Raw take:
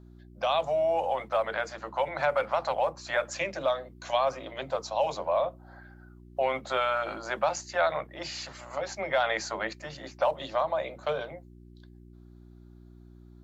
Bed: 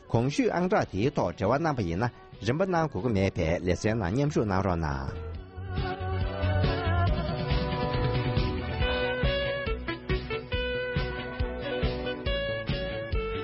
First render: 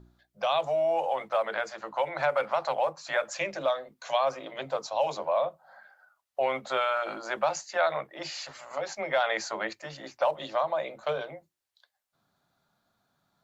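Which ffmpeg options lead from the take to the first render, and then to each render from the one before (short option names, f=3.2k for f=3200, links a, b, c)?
-af "bandreject=f=60:t=h:w=4,bandreject=f=120:t=h:w=4,bandreject=f=180:t=h:w=4,bandreject=f=240:t=h:w=4,bandreject=f=300:t=h:w=4,bandreject=f=360:t=h:w=4"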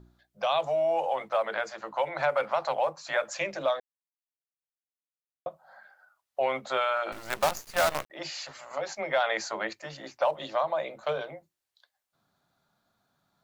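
-filter_complex "[0:a]asettb=1/sr,asplit=3[a][b][c];[a]atrim=end=7.124[d];[b]atrim=start=7.12:end=8.1,asetpts=PTS-STARTPTS,afade=t=in:d=0.004:c=qsin,afade=t=out:st=0.976:d=0.004:c=qsin,acrusher=bits=5:dc=4:mix=0:aa=0.000001[e];[c]atrim=start=8.096[f];[d][e]acrossfade=d=0.004:c1=hsin:c2=qsin[g];[g][f]acrossfade=d=0.004:c1=qsin:c2=hsin,asplit=3[h][i][j];[h]atrim=end=3.8,asetpts=PTS-STARTPTS,afade=t=out:st=3.796:d=0.004:c=hsin[k];[i]atrim=start=3.8:end=5.46,asetpts=PTS-STARTPTS,volume=0[l];[j]atrim=start=5.46,asetpts=PTS-STARTPTS,afade=t=in:d=0.004:c=hsin[m];[k][l][m]concat=n=3:v=0:a=1"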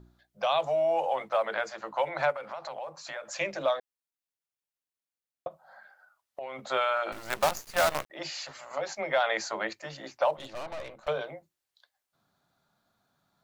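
-filter_complex "[0:a]asplit=3[a][b][c];[a]afade=t=out:st=2.31:d=0.02[d];[b]acompressor=threshold=-36dB:ratio=4:attack=3.2:release=140:knee=1:detection=peak,afade=t=in:st=2.31:d=0.02,afade=t=out:st=3.32:d=0.02[e];[c]afade=t=in:st=3.32:d=0.02[f];[d][e][f]amix=inputs=3:normalize=0,asettb=1/sr,asplit=3[g][h][i];[g]atrim=end=5.474[j];[h]atrim=start=5.47:end=6.59,asetpts=PTS-STARTPTS,afade=t=in:d=0.004:c=qsin,afade=t=out:st=1.116:d=0.004:c=qsin,acompressor=threshold=-35dB:ratio=6:attack=3.2:release=140:knee=1:detection=peak[k];[i]atrim=start=6.586[l];[j][k]acrossfade=d=0.004:c1=hsin:c2=qsin[m];[m][l]acrossfade=d=0.004:c1=qsin:c2=hsin,asettb=1/sr,asplit=3[n][o][p];[n]atrim=end=10.374[q];[o]atrim=start=10.37:end=11.08,asetpts=PTS-STARTPTS,afade=t=in:d=0.004:c=qsin,afade=t=out:st=0.706:d=0.004:c=qsin,aeval=exprs='(tanh(63.1*val(0)+0.8)-tanh(0.8))/63.1':c=same[r];[p]atrim=start=11.076[s];[q][r]acrossfade=d=0.004:c1=hsin:c2=qsin[t];[t][s]acrossfade=d=0.004:c1=qsin:c2=hsin"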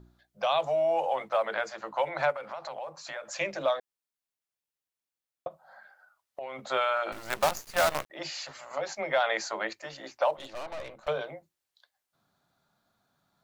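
-filter_complex "[0:a]asettb=1/sr,asplit=3[a][b][c];[a]atrim=end=9.364[d];[b]atrim=start=9.36:end=10.75,asetpts=PTS-STARTPTS,afade=t=in:d=0.004:c=qsin,afade=t=out:st=1.386:d=0.004:c=qsin,equalizer=f=140:w=1.1:g=-6.5[e];[c]atrim=start=10.746[f];[d][e]acrossfade=d=0.004:c1=hsin:c2=qsin[g];[g][f]acrossfade=d=0.004:c1=qsin:c2=hsin"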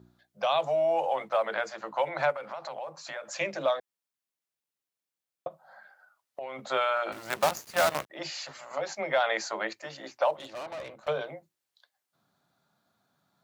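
-af "highpass=120,lowshelf=f=230:g=3.5"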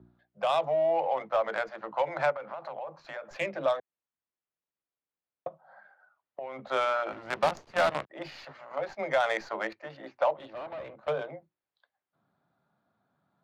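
-filter_complex "[0:a]acrossover=split=140|1600|6400[a][b][c][d];[d]acrusher=bits=5:dc=4:mix=0:aa=0.000001[e];[a][b][c][e]amix=inputs=4:normalize=0,adynamicsmooth=sensitivity=2:basefreq=2.3k"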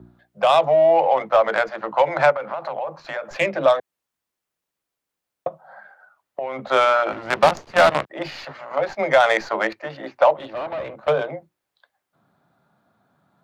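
-af "volume=11dB"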